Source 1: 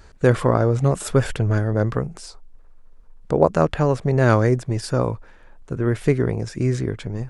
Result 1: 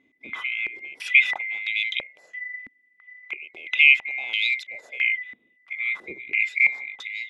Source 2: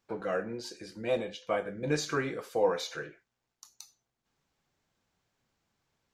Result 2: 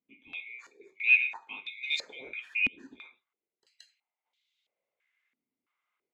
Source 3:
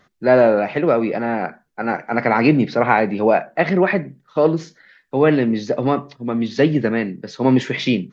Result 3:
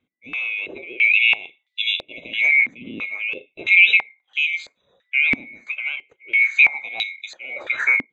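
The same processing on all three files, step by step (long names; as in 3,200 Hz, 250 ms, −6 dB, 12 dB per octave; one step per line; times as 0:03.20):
neighbouring bands swapped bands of 2,000 Hz
boost into a limiter +8 dB
band-pass on a step sequencer 3 Hz 260–3,800 Hz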